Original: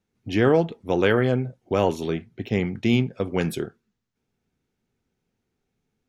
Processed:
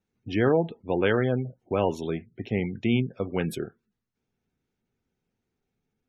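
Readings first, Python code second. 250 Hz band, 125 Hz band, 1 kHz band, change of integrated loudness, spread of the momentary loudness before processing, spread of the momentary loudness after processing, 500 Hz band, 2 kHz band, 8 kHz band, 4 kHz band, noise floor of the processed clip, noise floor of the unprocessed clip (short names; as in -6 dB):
-3.5 dB, -3.5 dB, -3.5 dB, -3.5 dB, 9 LU, 10 LU, -3.5 dB, -4.0 dB, -5.5 dB, -5.0 dB, -84 dBFS, -80 dBFS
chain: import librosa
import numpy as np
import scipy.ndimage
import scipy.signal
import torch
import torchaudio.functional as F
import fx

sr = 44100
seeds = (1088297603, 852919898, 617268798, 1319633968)

y = fx.spec_gate(x, sr, threshold_db=-30, keep='strong')
y = y * 10.0 ** (-3.5 / 20.0)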